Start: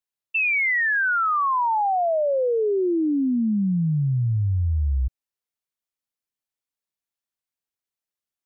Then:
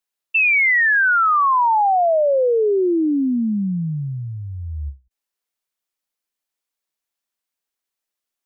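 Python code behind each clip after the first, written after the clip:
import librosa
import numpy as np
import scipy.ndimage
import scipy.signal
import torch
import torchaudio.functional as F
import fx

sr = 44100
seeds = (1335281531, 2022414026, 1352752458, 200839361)

y = fx.peak_eq(x, sr, hz=99.0, db=-14.0, octaves=1.5)
y = fx.end_taper(y, sr, db_per_s=260.0)
y = y * 10.0 ** (6.0 / 20.0)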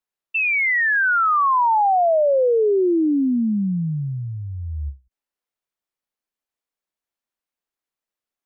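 y = fx.high_shelf(x, sr, hz=2500.0, db=-9.0)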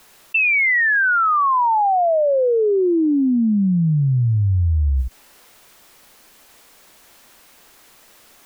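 y = fx.env_flatten(x, sr, amount_pct=100)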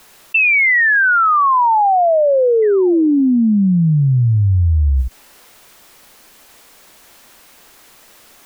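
y = fx.spec_paint(x, sr, seeds[0], shape='fall', start_s=2.62, length_s=0.6, low_hz=210.0, high_hz=2100.0, level_db=-41.0)
y = y * 10.0 ** (4.0 / 20.0)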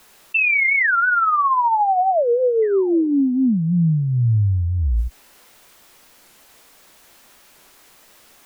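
y = fx.doubler(x, sr, ms=18.0, db=-11.0)
y = fx.record_warp(y, sr, rpm=45.0, depth_cents=250.0)
y = y * 10.0 ** (-5.0 / 20.0)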